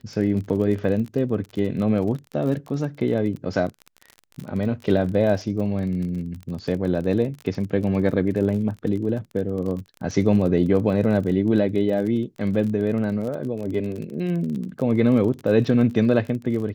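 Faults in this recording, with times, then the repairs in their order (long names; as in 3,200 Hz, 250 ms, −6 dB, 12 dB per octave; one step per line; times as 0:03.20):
surface crackle 33 per second −30 dBFS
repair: click removal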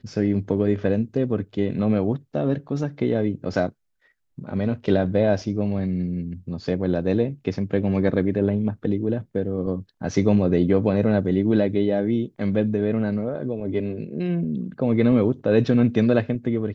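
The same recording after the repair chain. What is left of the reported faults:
none of them is left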